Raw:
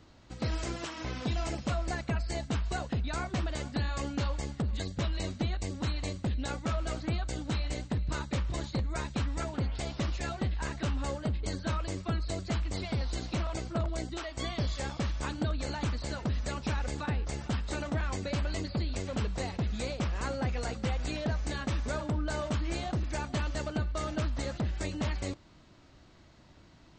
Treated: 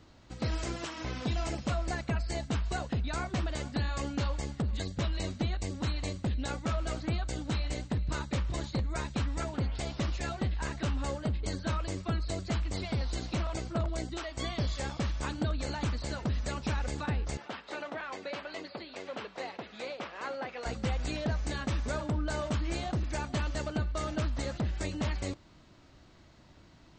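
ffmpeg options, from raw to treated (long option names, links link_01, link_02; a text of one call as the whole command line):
ffmpeg -i in.wav -filter_complex "[0:a]asettb=1/sr,asplit=3[link_01][link_02][link_03];[link_01]atrim=end=17.374[link_04];[link_02]atrim=start=17.37:end=20.66,asetpts=PTS-STARTPTS,afade=type=in:duration=0.004:curve=qsin,afade=type=out:start_time=3.286:duration=0.004:curve=qsin,highpass=430,lowpass=3700[link_05];[link_03]atrim=start=20.656[link_06];[link_04][link_05]acrossfade=duration=0.004:curve1=hsin:curve2=qsin[link_07];[link_07][link_06]acrossfade=duration=0.004:curve1=qsin:curve2=hsin" out.wav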